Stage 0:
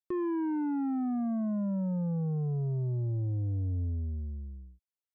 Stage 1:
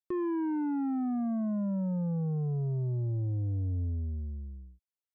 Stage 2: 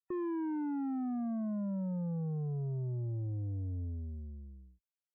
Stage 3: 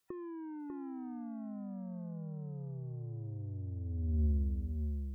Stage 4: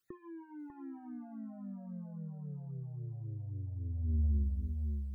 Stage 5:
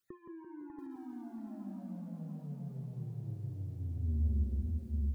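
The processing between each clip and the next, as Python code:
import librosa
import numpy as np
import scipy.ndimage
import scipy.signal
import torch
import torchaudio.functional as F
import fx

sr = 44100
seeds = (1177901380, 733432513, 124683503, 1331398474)

y1 = x
y2 = fx.peak_eq(y1, sr, hz=70.0, db=-3.5, octaves=0.8)
y2 = fx.spec_topn(y2, sr, count=64)
y2 = y2 * 10.0 ** (-4.5 / 20.0)
y3 = fx.over_compress(y2, sr, threshold_db=-43.0, ratio=-0.5)
y3 = y3 + 10.0 ** (-6.0 / 20.0) * np.pad(y3, (int(596 * sr / 1000.0), 0))[:len(y3)]
y3 = y3 * 10.0 ** (6.5 / 20.0)
y4 = fx.phaser_stages(y3, sr, stages=12, low_hz=340.0, high_hz=1000.0, hz=3.7, feedback_pct=25)
y5 = fx.echo_tape(y4, sr, ms=167, feedback_pct=76, wet_db=-3.0, lp_hz=1100.0, drive_db=26.0, wow_cents=35)
y5 = fx.echo_crushed(y5, sr, ms=682, feedback_pct=35, bits=11, wet_db=-6.5)
y5 = y5 * 10.0 ** (-1.5 / 20.0)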